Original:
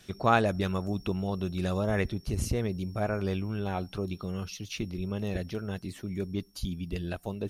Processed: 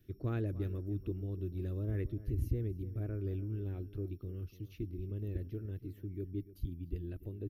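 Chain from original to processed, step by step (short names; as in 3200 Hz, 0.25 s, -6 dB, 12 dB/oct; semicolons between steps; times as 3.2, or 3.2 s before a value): EQ curve 130 Hz 0 dB, 190 Hz -15 dB, 310 Hz +1 dB, 820 Hz -28 dB, 1800 Hz -17 dB, 8500 Hz -28 dB, 13000 Hz -4 dB; outdoor echo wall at 50 m, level -16 dB; gain -2.5 dB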